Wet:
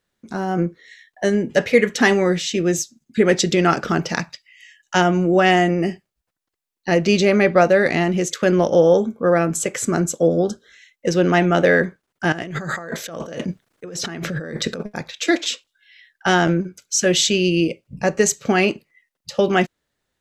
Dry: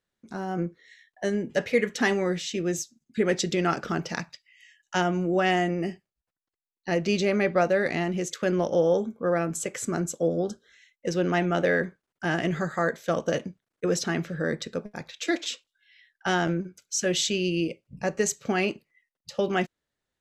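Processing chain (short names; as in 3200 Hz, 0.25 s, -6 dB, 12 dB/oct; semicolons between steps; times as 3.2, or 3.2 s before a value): 12.32–14.83 negative-ratio compressor -37 dBFS, ratio -1; gain +8.5 dB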